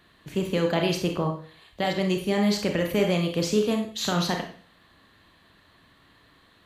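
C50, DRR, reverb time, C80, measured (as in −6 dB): 7.0 dB, 3.0 dB, 0.45 s, 11.5 dB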